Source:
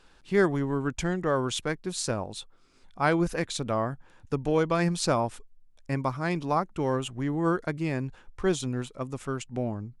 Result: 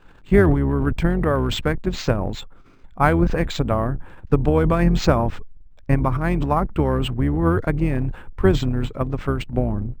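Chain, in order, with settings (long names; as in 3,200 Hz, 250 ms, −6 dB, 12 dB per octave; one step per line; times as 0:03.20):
sub-octave generator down 2 octaves, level −3 dB
bass and treble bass +4 dB, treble −14 dB
transient designer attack +7 dB, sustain +11 dB
linearly interpolated sample-rate reduction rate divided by 4×
level +3 dB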